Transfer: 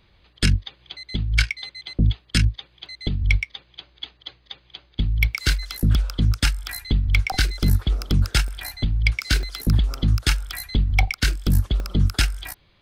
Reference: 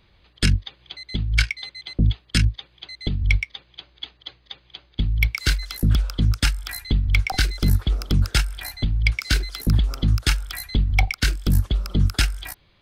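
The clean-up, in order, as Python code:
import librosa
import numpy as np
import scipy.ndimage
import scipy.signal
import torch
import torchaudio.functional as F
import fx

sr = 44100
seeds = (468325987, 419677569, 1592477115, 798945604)

y = fx.fix_interpolate(x, sr, at_s=(2.86, 5.34, 8.48, 9.43, 11.8), length_ms=1.0)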